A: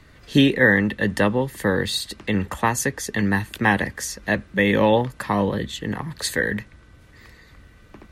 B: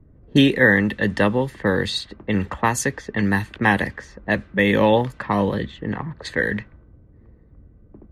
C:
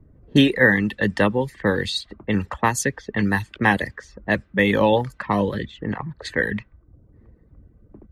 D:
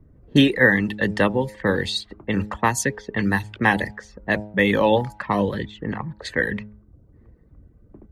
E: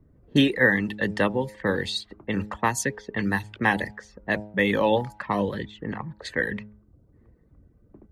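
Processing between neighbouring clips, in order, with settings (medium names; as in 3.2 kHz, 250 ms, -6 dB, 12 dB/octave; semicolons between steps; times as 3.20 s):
level-controlled noise filter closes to 360 Hz, open at -17.5 dBFS; trim +1 dB
reverb removal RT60 0.57 s
de-hum 105.1 Hz, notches 9
bass shelf 83 Hz -5 dB; trim -3.5 dB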